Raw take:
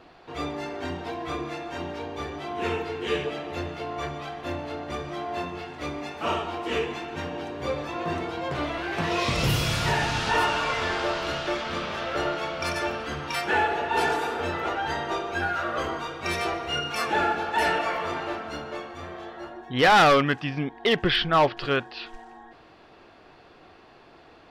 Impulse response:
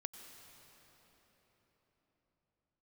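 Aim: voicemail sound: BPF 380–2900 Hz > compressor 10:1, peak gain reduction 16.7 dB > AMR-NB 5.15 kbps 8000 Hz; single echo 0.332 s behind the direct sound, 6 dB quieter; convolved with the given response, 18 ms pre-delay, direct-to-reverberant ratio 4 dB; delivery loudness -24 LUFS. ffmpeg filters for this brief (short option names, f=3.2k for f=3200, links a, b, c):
-filter_complex "[0:a]aecho=1:1:332:0.501,asplit=2[a][b];[1:a]atrim=start_sample=2205,adelay=18[c];[b][c]afir=irnorm=-1:irlink=0,volume=-1dB[d];[a][d]amix=inputs=2:normalize=0,highpass=380,lowpass=2.9k,acompressor=threshold=-29dB:ratio=10,volume=13dB" -ar 8000 -c:a libopencore_amrnb -b:a 5150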